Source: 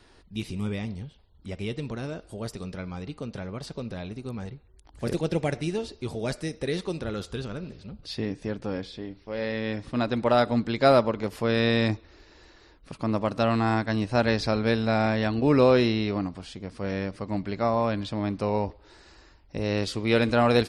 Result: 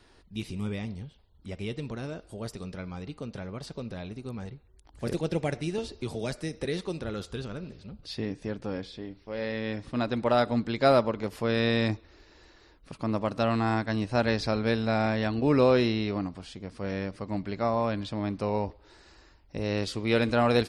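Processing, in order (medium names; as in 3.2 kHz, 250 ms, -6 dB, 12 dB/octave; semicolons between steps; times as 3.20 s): 5.78–6.65 s: three bands compressed up and down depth 70%; trim -2.5 dB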